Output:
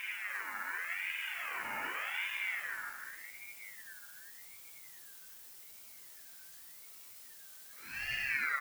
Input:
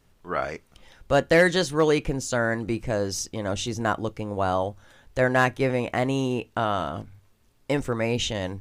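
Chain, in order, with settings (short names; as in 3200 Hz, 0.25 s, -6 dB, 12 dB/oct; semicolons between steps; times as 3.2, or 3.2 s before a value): treble ducked by the level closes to 310 Hz, closed at -20.5 dBFS; limiter -20 dBFS, peak gain reduction 8 dB; added noise blue -47 dBFS; Paulstretch 8×, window 0.10 s, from 6.69; echo 0.297 s -4.5 dB; on a send at -5 dB: reverb, pre-delay 3 ms; on the sum: ring modulator with a swept carrier 1900 Hz, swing 20%, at 0.86 Hz; gain -6 dB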